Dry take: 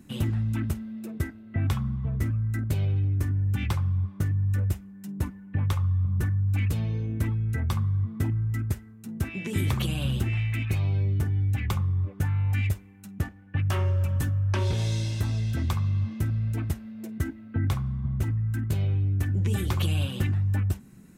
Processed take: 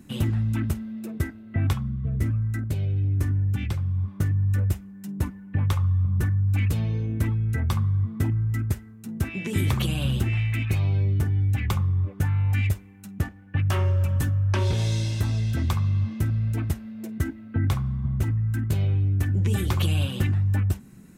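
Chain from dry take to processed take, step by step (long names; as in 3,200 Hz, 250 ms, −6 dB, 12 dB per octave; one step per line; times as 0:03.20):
0:01.73–0:04.08: rotating-speaker cabinet horn 1.1 Hz
level +2.5 dB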